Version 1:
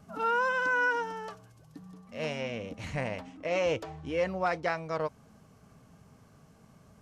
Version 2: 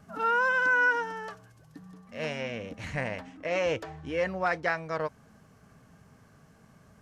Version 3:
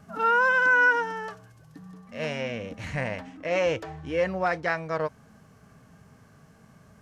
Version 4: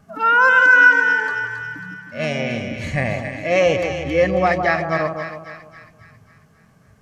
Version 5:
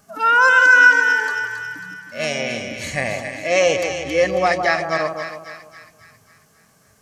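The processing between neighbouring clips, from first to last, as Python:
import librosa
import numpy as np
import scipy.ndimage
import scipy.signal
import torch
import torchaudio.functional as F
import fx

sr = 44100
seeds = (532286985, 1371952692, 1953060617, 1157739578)

y1 = fx.peak_eq(x, sr, hz=1700.0, db=7.0, octaves=0.5)
y2 = fx.hpss(y1, sr, part='harmonic', gain_db=4)
y3 = fx.noise_reduce_blind(y2, sr, reduce_db=10)
y3 = fx.echo_split(y3, sr, split_hz=1300.0, low_ms=155, high_ms=272, feedback_pct=52, wet_db=-6.5)
y3 = F.gain(torch.from_numpy(y3), 9.0).numpy()
y4 = fx.bass_treble(y3, sr, bass_db=-9, treble_db=12)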